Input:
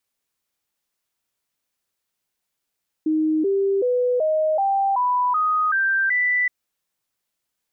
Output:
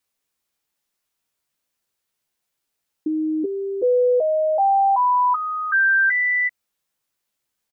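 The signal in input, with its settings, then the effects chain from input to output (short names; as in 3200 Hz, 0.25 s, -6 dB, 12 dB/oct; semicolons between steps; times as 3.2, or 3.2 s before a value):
stepped sine 312 Hz up, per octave 3, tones 9, 0.38 s, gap 0.00 s -17 dBFS
doubler 14 ms -6 dB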